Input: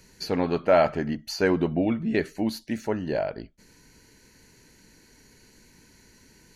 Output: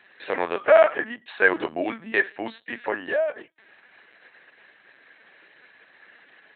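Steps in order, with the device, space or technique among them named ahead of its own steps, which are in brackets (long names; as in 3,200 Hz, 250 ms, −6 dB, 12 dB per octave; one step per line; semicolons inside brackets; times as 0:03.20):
talking toy (linear-prediction vocoder at 8 kHz pitch kept; high-pass filter 620 Hz 12 dB per octave; parametric band 1,700 Hz +9 dB 0.25 octaves)
level +7 dB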